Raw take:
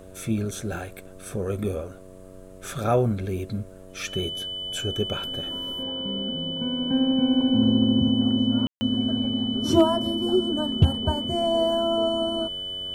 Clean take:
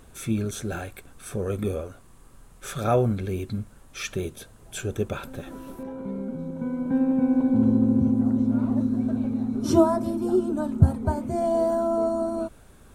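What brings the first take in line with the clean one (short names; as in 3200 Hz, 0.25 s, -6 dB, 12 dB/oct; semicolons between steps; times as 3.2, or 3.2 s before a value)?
clip repair -8.5 dBFS; de-hum 93.9 Hz, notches 7; notch 3000 Hz, Q 30; room tone fill 8.67–8.81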